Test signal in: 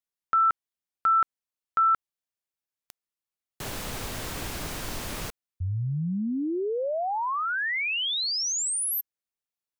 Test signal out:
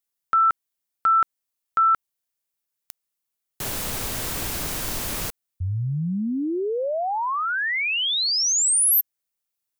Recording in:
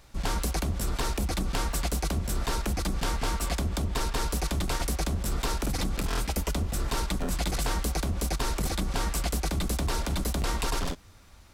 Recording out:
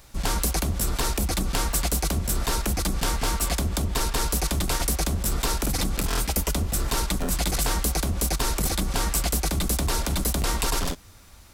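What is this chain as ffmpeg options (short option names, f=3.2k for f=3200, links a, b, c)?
-af "crystalizer=i=1:c=0,volume=3dB"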